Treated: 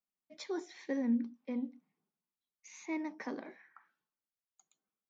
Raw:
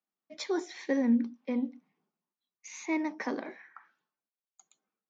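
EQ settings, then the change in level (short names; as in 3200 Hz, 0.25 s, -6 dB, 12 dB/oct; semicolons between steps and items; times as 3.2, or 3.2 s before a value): low shelf 120 Hz +11 dB; -8.0 dB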